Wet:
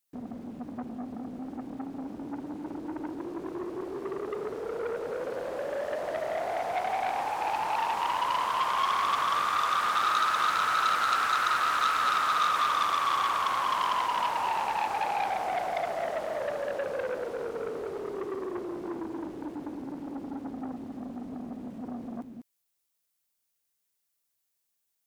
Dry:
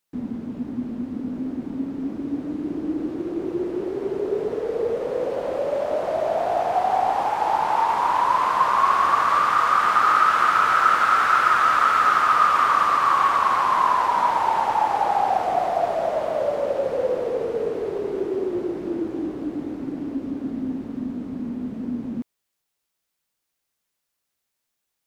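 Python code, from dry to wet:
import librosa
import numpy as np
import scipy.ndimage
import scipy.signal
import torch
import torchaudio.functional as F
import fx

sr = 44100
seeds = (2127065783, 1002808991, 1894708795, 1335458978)

y = fx.high_shelf(x, sr, hz=5700.0, db=10.0)
y = y + 10.0 ** (-7.0 / 20.0) * np.pad(y, (int(195 * sr / 1000.0), 0))[:len(y)]
y = fx.transformer_sat(y, sr, knee_hz=2500.0)
y = y * 10.0 ** (-8.0 / 20.0)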